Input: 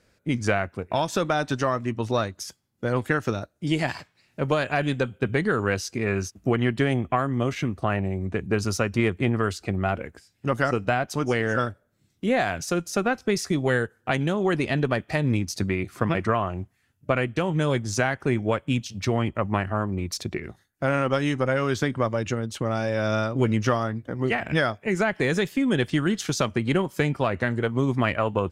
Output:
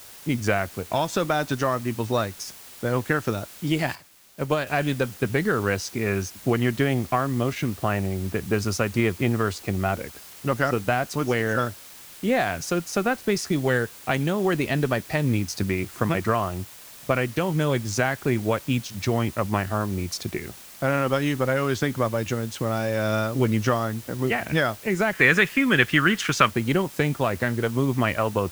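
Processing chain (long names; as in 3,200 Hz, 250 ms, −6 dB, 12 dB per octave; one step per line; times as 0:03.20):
0:25.13–0:26.51: flat-topped bell 1,800 Hz +11.5 dB
in parallel at −5 dB: bit-depth reduction 6 bits, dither triangular
0:03.95–0:04.67: on the sum: expander for the loud parts 1.5 to 1, over −35 dBFS
level −3.5 dB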